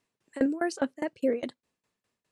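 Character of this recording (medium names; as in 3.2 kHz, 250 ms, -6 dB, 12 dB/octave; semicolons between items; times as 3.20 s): tremolo saw down 4.9 Hz, depth 95%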